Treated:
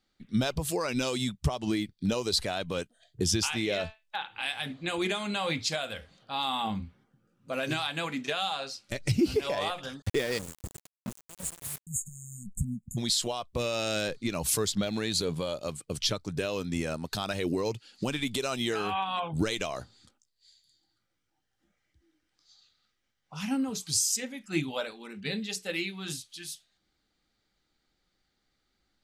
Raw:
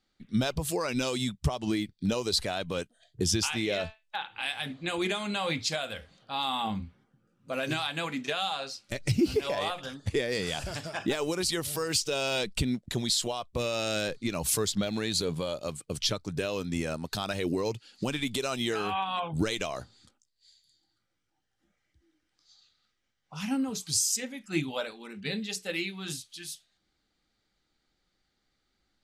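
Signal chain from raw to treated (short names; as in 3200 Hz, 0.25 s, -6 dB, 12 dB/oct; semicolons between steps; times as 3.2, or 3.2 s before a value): 10.38–12.97 spectral delete 250–6500 Hz; 10.02–11.87 sample gate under -34.5 dBFS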